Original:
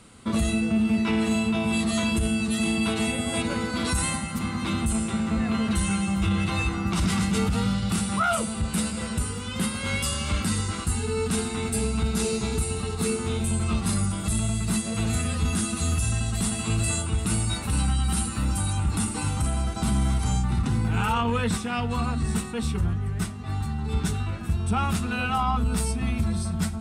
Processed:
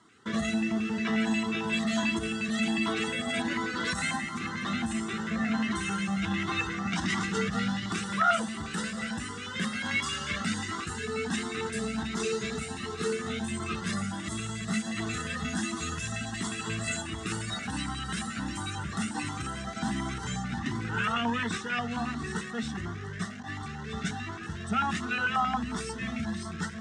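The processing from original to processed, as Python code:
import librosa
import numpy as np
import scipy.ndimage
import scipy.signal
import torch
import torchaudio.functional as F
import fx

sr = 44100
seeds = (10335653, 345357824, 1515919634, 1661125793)

p1 = fx.quant_dither(x, sr, seeds[0], bits=6, dither='none')
p2 = x + (p1 * 10.0 ** (-3.0 / 20.0))
p3 = fx.filter_lfo_notch(p2, sr, shape='square', hz=5.6, low_hz=900.0, high_hz=2400.0, q=1.2)
p4 = fx.cabinet(p3, sr, low_hz=230.0, low_slope=12, high_hz=6500.0, hz=(540.0, 1800.0, 4500.0), db=(-10, 10, -7))
y = fx.comb_cascade(p4, sr, direction='rising', hz=1.4)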